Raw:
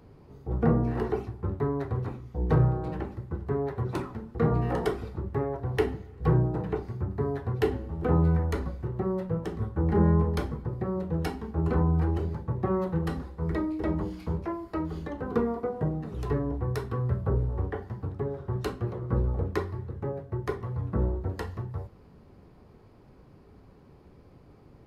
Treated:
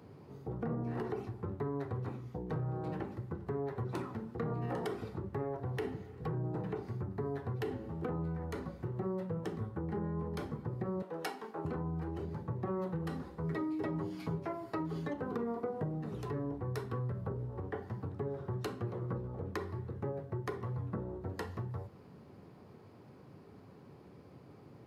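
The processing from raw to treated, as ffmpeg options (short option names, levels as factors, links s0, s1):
-filter_complex "[0:a]asettb=1/sr,asplit=3[s0][s1][s2];[s0]atrim=end=11.024[s3];[s1]atrim=start=11.02:end=11.65,asetpts=PTS-STARTPTS,afade=t=in:d=0.004:c=qsin,afade=t=out:st=0.626:d=0.004:c=qsin,highpass=510[s4];[s2]atrim=start=11.646[s5];[s3][s4]acrossfade=d=0.004:c1=hsin:c2=qsin[s6];[s6][s5]acrossfade=d=0.004:c1=qsin:c2=hsin,asettb=1/sr,asplit=3[s7][s8][s9];[s7]atrim=end=13.434[s10];[s8]atrim=start=13.43:end=15.14,asetpts=PTS-STARTPTS,afade=t=in:d=0.004:c=qsin,afade=t=out:st=1.706:d=0.004:c=qsin,aecho=1:1:7.3:0.65,atrim=end_sample=75411[s11];[s9]atrim=start=15.136[s12];[s10][s11]acrossfade=d=0.004:c1=hsin:c2=qsin[s13];[s13][s12]acrossfade=d=0.004:c1=qsin:c2=hsin,alimiter=limit=0.0944:level=0:latency=1:release=56,acompressor=threshold=0.0178:ratio=3,highpass=f=97:w=0.5412,highpass=f=97:w=1.3066"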